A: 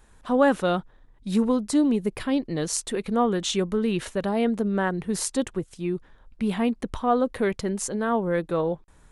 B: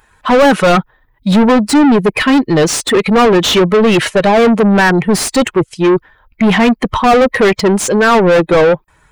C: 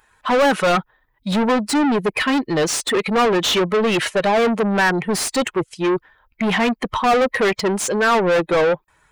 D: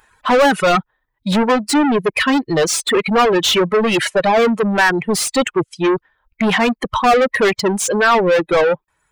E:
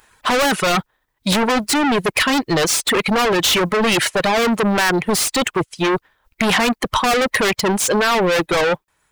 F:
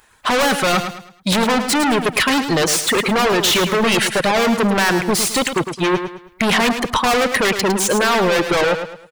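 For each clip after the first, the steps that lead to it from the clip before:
expander on every frequency bin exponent 1.5; overdrive pedal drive 35 dB, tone 2.4 kHz, clips at -8 dBFS; trim +7 dB
bass shelf 330 Hz -7 dB; trim -5.5 dB
reverb removal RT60 1.4 s; trim +4 dB
spectral contrast reduction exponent 0.67; in parallel at 0 dB: compressor with a negative ratio -16 dBFS, ratio -0.5; on the sum: trim -6.5 dB
feedback delay 107 ms, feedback 35%, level -8.5 dB

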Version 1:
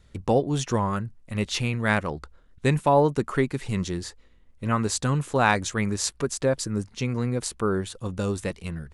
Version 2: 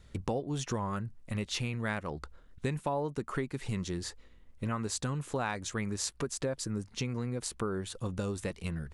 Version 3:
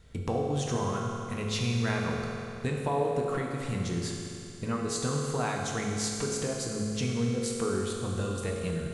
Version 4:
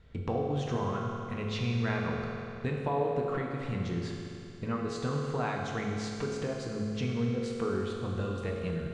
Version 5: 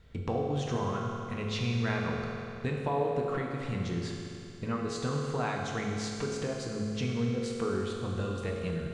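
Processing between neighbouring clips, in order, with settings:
compression 4:1, threshold -32 dBFS, peak gain reduction 15 dB
reverberation RT60 2.8 s, pre-delay 3 ms, DRR -2 dB
low-pass 3.4 kHz 12 dB/octave; trim -1.5 dB
treble shelf 5.2 kHz +7.5 dB

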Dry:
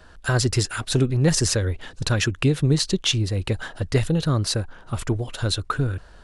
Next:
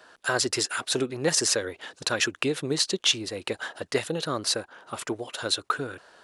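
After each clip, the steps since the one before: high-pass 380 Hz 12 dB/octave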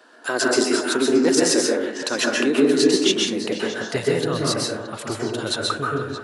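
repeats whose band climbs or falls 156 ms, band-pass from 280 Hz, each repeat 1.4 oct, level -4 dB; high-pass sweep 260 Hz -> 110 Hz, 2.95–4.11 s; plate-style reverb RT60 0.63 s, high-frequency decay 0.4×, pre-delay 115 ms, DRR -2.5 dB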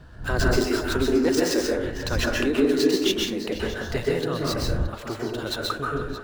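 median filter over 5 samples; wind noise 93 Hz -28 dBFS; trim -3.5 dB

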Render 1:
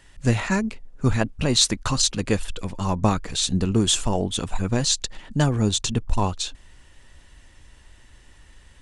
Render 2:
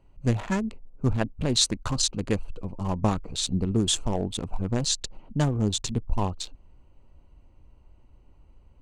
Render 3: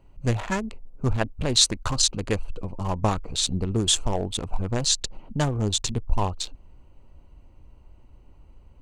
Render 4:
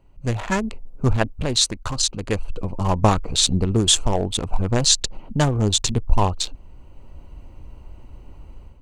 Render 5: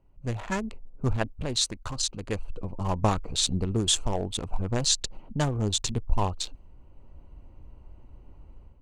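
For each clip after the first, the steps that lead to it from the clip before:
local Wiener filter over 25 samples; trim -3.5 dB
dynamic bell 210 Hz, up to -7 dB, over -38 dBFS, Q 0.79; trim +4 dB
level rider gain up to 11 dB; trim -1 dB
tape noise reduction on one side only decoder only; trim -7.5 dB

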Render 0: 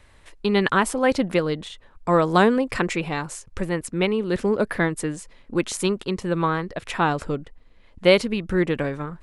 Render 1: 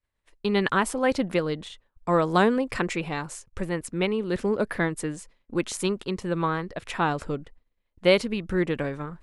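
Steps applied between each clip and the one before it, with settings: expander -37 dBFS; trim -3.5 dB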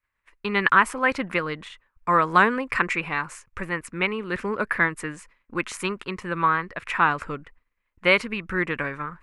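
high-order bell 1.6 kHz +12 dB; trim -3.5 dB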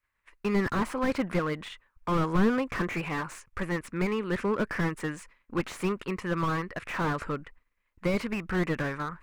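slew-rate limiter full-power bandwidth 42 Hz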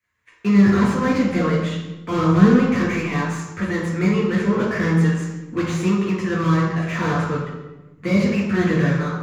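reverberation RT60 1.1 s, pre-delay 3 ms, DRR -4 dB; trim -2.5 dB

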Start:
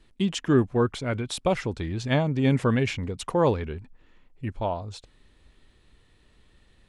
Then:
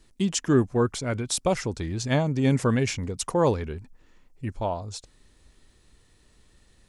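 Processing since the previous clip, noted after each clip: resonant high shelf 4.4 kHz +7.5 dB, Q 1.5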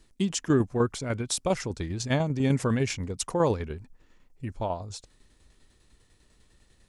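tremolo saw down 10 Hz, depth 50%

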